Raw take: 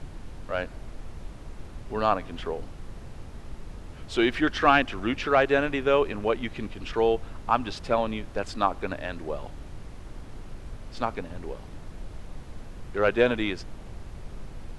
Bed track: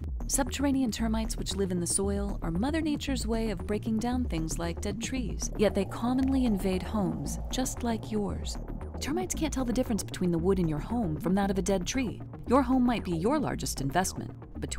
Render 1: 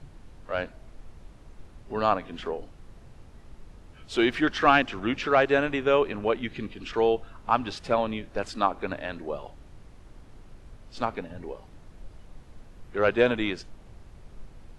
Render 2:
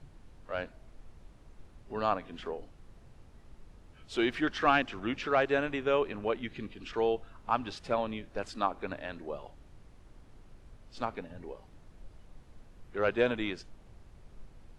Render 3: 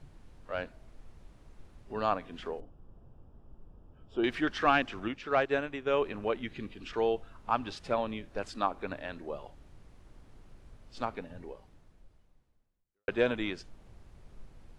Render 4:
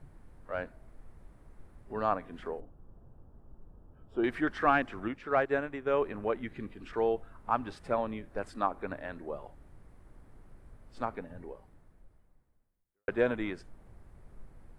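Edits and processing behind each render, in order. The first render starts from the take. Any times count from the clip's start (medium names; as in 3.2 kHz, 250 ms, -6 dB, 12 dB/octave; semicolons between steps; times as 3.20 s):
noise print and reduce 8 dB
trim -6 dB
2.60–4.24 s: boxcar filter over 21 samples; 5.08–5.97 s: upward expansion, over -39 dBFS; 11.38–13.08 s: fade out quadratic
high-order bell 4.2 kHz -9.5 dB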